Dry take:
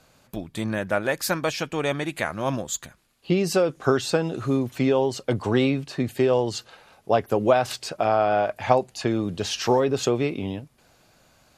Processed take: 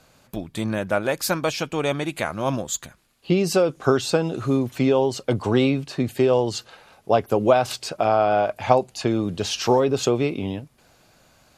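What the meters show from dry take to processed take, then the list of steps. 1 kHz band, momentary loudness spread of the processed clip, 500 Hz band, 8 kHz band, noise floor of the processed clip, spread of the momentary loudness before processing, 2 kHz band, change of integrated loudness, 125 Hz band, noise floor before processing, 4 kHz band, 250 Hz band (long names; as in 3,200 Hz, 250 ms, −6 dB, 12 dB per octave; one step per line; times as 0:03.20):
+2.0 dB, 10 LU, +2.0 dB, +2.0 dB, −58 dBFS, 10 LU, 0.0 dB, +2.0 dB, +2.0 dB, −60 dBFS, +2.0 dB, +2.0 dB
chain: dynamic equaliser 1,800 Hz, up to −6 dB, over −48 dBFS, Q 4.3
level +2 dB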